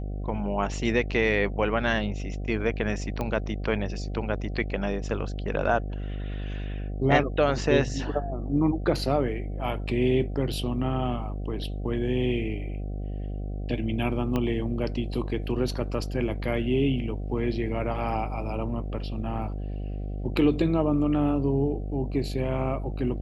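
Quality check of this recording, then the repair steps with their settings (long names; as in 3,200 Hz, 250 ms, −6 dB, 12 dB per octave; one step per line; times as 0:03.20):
mains buzz 50 Hz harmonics 15 −32 dBFS
0:03.21: click −17 dBFS
0:14.36: click −15 dBFS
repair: click removal
hum removal 50 Hz, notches 15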